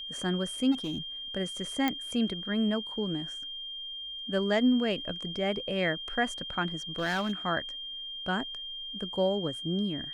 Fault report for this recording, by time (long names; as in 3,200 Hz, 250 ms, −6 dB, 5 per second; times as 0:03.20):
whistle 3,200 Hz −37 dBFS
0:00.71–0:00.98: clipping −28.5 dBFS
0:01.88: click −14 dBFS
0:06.96–0:07.33: clipping −25.5 dBFS